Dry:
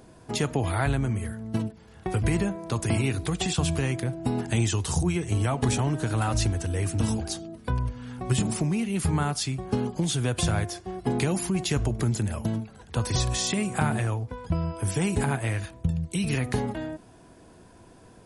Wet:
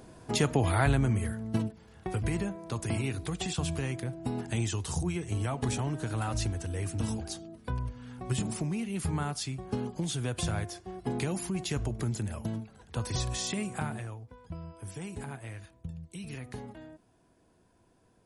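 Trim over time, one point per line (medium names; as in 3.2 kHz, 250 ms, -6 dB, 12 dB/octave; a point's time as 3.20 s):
1.31 s 0 dB
2.27 s -6.5 dB
13.65 s -6.5 dB
14.18 s -14.5 dB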